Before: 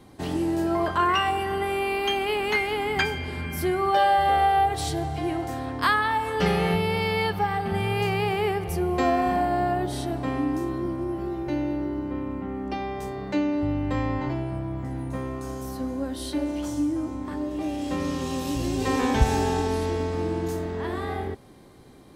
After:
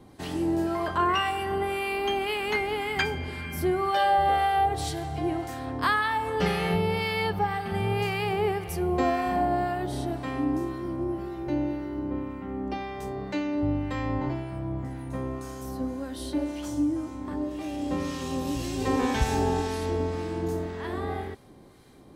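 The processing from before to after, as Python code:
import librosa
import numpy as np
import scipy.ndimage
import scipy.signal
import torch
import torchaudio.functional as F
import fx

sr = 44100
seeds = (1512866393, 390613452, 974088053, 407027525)

y = fx.harmonic_tremolo(x, sr, hz=1.9, depth_pct=50, crossover_hz=1100.0)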